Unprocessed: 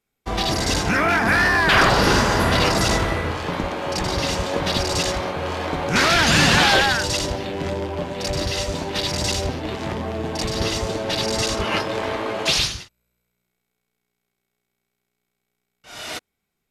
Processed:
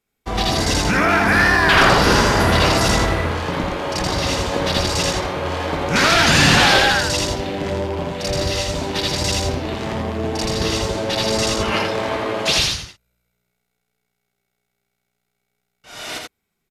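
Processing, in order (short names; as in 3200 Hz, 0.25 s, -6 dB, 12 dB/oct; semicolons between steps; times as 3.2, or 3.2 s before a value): echo 82 ms -3.5 dB; gain +1 dB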